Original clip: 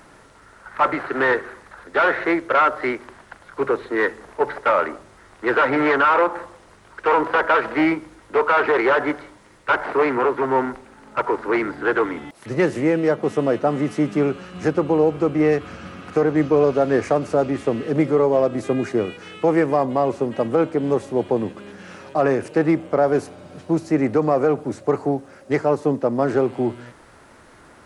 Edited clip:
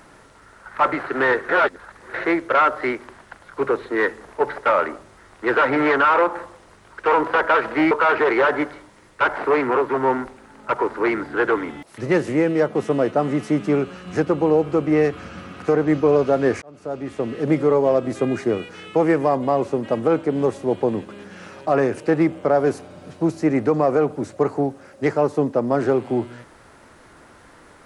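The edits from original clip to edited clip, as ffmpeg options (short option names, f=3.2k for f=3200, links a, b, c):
-filter_complex "[0:a]asplit=5[a][b][c][d][e];[a]atrim=end=1.492[f];[b]atrim=start=1.488:end=2.142,asetpts=PTS-STARTPTS,areverse[g];[c]atrim=start=2.138:end=7.912[h];[d]atrim=start=8.388:end=17.1,asetpts=PTS-STARTPTS,afade=t=out:st=8.708:d=0.004:c=hsin[i];[e]atrim=start=17.1,asetpts=PTS-STARTPTS,afade=t=in:d=0.9[j];[f][g]acrossfade=d=0.004:c1=hsin:c2=hsin[k];[k][h]acrossfade=d=0.004:c1=hsin:c2=hsin[l];[i][j]concat=n=2:v=0:a=1[m];[l][m]acrossfade=d=0.004:c1=hsin:c2=hsin"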